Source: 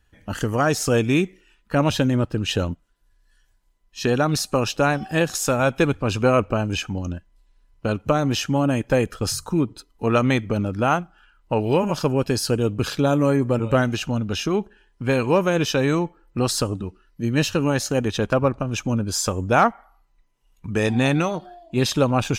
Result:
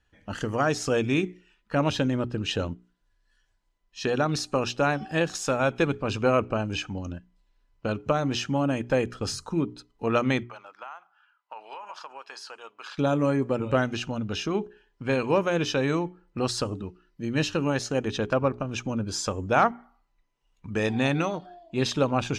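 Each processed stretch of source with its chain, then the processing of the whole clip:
10.43–12.98 s: Chebyshev high-pass 960 Hz, order 3 + tilt EQ -3.5 dB/octave + compression 12:1, threshold -31 dBFS
whole clip: low-pass 6.4 kHz 12 dB/octave; bass shelf 100 Hz -5.5 dB; hum notches 60/120/180/240/300/360/420 Hz; trim -4 dB

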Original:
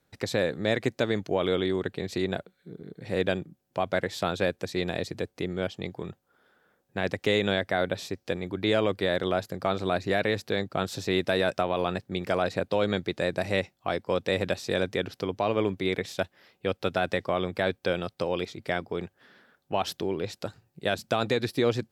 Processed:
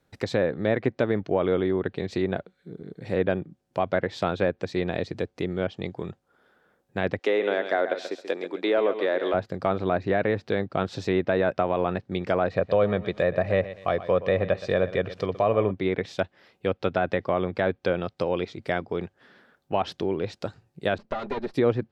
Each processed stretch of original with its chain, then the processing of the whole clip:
7.19–9.34 s: high-pass 300 Hz 24 dB/octave + hard clipper -16.5 dBFS + feedback delay 134 ms, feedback 26%, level -10 dB
12.49–15.71 s: comb 1.7 ms, depth 44% + bit-crushed delay 121 ms, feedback 35%, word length 8-bit, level -14.5 dB
20.98–21.54 s: comb filter that takes the minimum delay 5 ms + low-pass 1.1 kHz 6 dB/octave + bass shelf 150 Hz -8 dB
whole clip: tilt EQ -1.5 dB/octave; low-pass that closes with the level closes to 2 kHz, closed at -20.5 dBFS; bass shelf 250 Hz -5.5 dB; trim +2.5 dB

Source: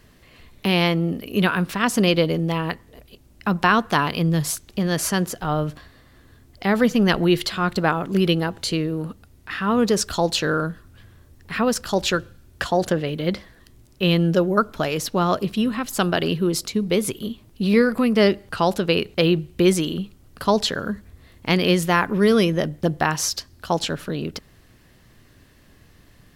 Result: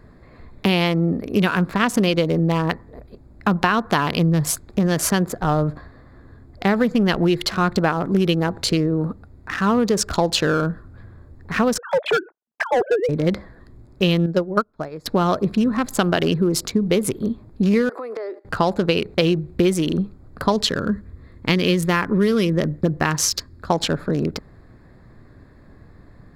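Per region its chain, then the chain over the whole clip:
11.78–13.09 s: formants replaced by sine waves + gate -50 dBFS, range -39 dB + hard clipper -18 dBFS
14.26–15.06 s: peaking EQ 5 kHz +5.5 dB 0.75 oct + upward expansion 2.5:1, over -32 dBFS
17.89–18.45 s: gate -36 dBFS, range -16 dB + steep high-pass 330 Hz 48 dB/octave + compression 20:1, threshold -31 dBFS
20.52–23.69 s: peaking EQ 750 Hz -8 dB 0.72 oct + band-stop 1.5 kHz, Q 27
whole clip: local Wiener filter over 15 samples; compression, threshold -21 dBFS; trim +6.5 dB

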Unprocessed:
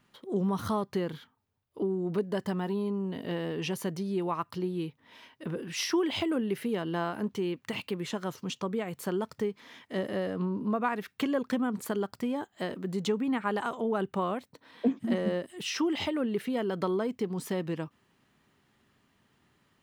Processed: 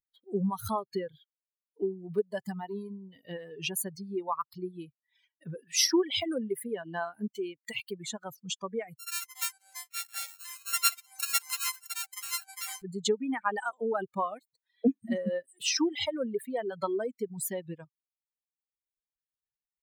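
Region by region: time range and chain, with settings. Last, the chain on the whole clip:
8.97–12.82 s: sorted samples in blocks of 32 samples + high-pass 1.4 kHz + ever faster or slower copies 186 ms, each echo -5 st, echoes 2, each echo -6 dB
whole clip: expander on every frequency bin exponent 2; reverb removal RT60 1.4 s; tone controls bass -4 dB, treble +10 dB; trim +5 dB

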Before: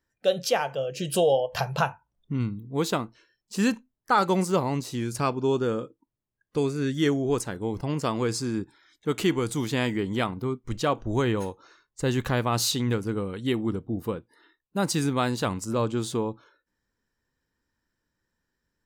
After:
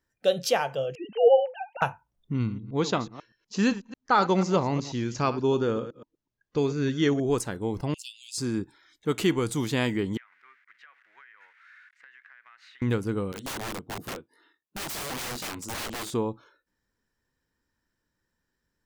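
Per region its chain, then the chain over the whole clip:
0.95–1.82 s: formants replaced by sine waves + bass shelf 320 Hz +5.5 dB
2.34–7.20 s: chunks repeated in reverse 123 ms, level -13.5 dB + steep low-pass 7 kHz 96 dB/octave
7.94–8.38 s: rippled Chebyshev high-pass 2.6 kHz, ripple 3 dB + upward compressor, threshold -47 dBFS
10.17–12.82 s: zero-crossing glitches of -29.5 dBFS + Butterworth band-pass 1.8 kHz, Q 2.6 + compression 12:1, threshold -48 dBFS
13.32–16.14 s: high-pass 120 Hz + chorus 2.7 Hz, delay 18.5 ms, depth 2.7 ms + integer overflow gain 29.5 dB
whole clip: none

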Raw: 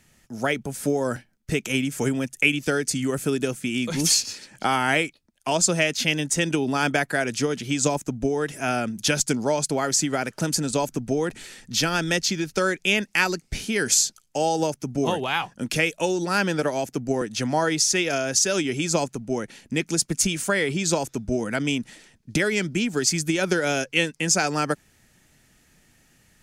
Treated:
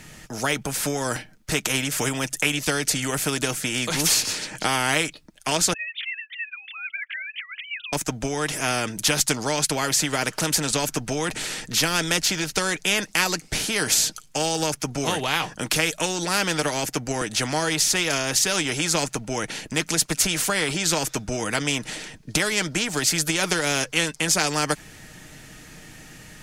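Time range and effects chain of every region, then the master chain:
5.73–7.93 s: formants replaced by sine waves + elliptic high-pass 2 kHz, stop band 80 dB + upward compressor, threshold -47 dBFS
whole clip: treble shelf 8 kHz -5.5 dB; comb 6.5 ms, depth 35%; spectrum-flattening compressor 2:1

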